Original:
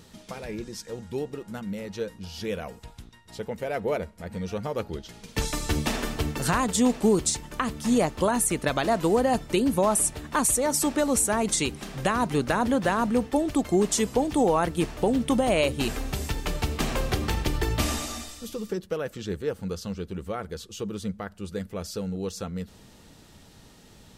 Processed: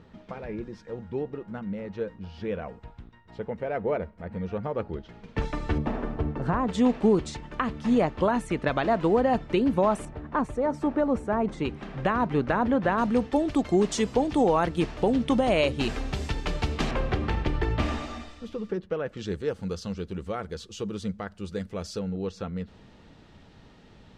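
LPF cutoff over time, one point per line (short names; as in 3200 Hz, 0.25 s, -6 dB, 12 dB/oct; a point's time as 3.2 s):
1900 Hz
from 5.78 s 1100 Hz
from 6.67 s 2700 Hz
from 10.05 s 1300 Hz
from 11.65 s 2200 Hz
from 12.98 s 4800 Hz
from 16.91 s 2500 Hz
from 19.17 s 6400 Hz
from 21.99 s 3100 Hz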